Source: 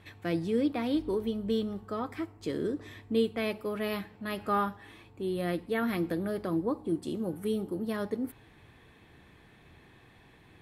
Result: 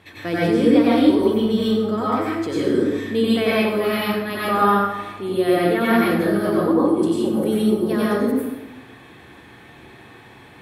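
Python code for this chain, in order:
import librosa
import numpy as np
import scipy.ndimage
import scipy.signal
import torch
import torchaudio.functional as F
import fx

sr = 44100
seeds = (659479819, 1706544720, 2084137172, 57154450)

y = scipy.signal.sosfilt(scipy.signal.butter(2, 54.0, 'highpass', fs=sr, output='sos'), x)
y = fx.low_shelf(y, sr, hz=140.0, db=-9.0)
y = fx.rev_plate(y, sr, seeds[0], rt60_s=1.0, hf_ratio=0.65, predelay_ms=80, drr_db=-7.5)
y = y * librosa.db_to_amplitude(6.5)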